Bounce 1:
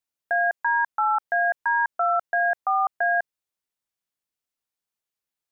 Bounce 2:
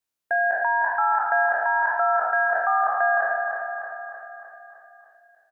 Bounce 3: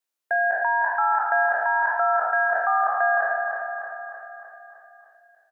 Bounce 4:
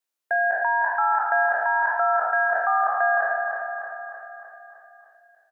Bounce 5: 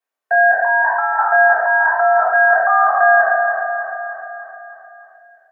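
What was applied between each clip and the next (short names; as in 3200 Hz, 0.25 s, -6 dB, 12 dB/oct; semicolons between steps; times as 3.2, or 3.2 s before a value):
spectral trails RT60 1.19 s; on a send: feedback echo 0.306 s, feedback 58%, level -7 dB
HPF 290 Hz 12 dB/oct
nothing audible
three-band isolator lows -15 dB, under 340 Hz, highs -12 dB, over 2100 Hz; reverb RT60 0.25 s, pre-delay 3 ms, DRR -3.5 dB; gain +3.5 dB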